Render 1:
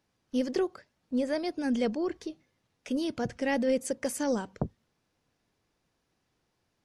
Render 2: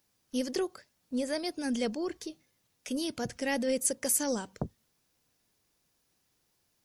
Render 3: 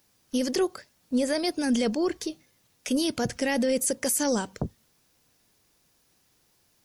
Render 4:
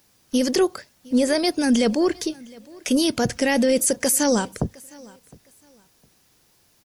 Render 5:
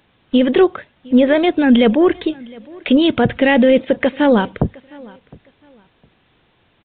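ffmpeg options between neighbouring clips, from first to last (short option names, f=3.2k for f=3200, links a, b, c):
-af "aemphasis=mode=production:type=75fm,volume=-2.5dB"
-af "alimiter=level_in=0.5dB:limit=-24dB:level=0:latency=1:release=23,volume=-0.5dB,volume=8dB"
-af "aecho=1:1:710|1420:0.0631|0.0158,volume=6dB"
-af "aresample=8000,aresample=44100,volume=7.5dB"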